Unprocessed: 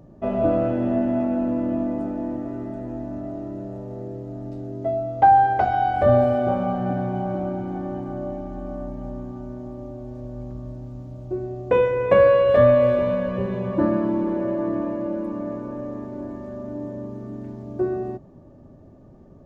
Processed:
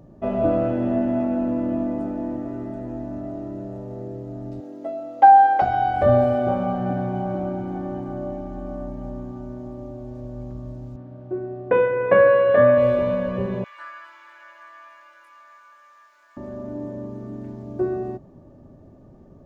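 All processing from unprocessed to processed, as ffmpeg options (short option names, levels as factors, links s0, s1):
-filter_complex "[0:a]asettb=1/sr,asplit=3[s0][s1][s2];[s0]atrim=end=4.604[s3];[s1]atrim=start=4.6:end=5.62,asetpts=PTS-STARTPTS,afade=t=in:d=0.004:c=qsin,afade=t=out:st=1.016:d=0.004:c=qsin,highpass=370,aecho=1:1:3.7:0.54,atrim=end_sample=44982[s4];[s2]atrim=start=5.616[s5];[s3][s4]acrossfade=d=0.004:c1=hsin:c2=qsin[s6];[s6][s5]acrossfade=d=0.004:c1=qsin:c2=hsin,asettb=1/sr,asplit=3[s7][s8][s9];[s7]atrim=end=10.964[s10];[s8]atrim=start=10.96:end=12.78,asetpts=PTS-STARTPTS,afade=t=in:d=0.004:c=qsin,afade=t=out:st=1.816:d=0.004:c=qsin,highpass=140,lowpass=2500,equalizer=f=1600:t=o:w=0.42:g=7[s11];[s9]atrim=start=12.776[s12];[s10][s11]acrossfade=d=0.004:c1=hsin:c2=qsin[s13];[s13][s12]acrossfade=d=0.004:c1=qsin:c2=hsin,asettb=1/sr,asplit=3[s14][s15][s16];[s14]atrim=end=13.644[s17];[s15]atrim=start=13.64:end=16.37,asetpts=PTS-STARTPTS,afade=t=in:d=0.004:c=qsin,afade=t=out:st=2.726:d=0.004:c=qsin,highpass=f=1400:w=0.5412,highpass=f=1400:w=1.3066,asplit=2[s18][s19];[s19]adelay=21,volume=0.708[s20];[s18][s20]amix=inputs=2:normalize=0,atrim=end_sample=120393[s21];[s16]atrim=start=16.366[s22];[s17][s21]acrossfade=d=0.004:c1=hsin:c2=qsin[s23];[s23][s22]acrossfade=d=0.004:c1=qsin:c2=hsin"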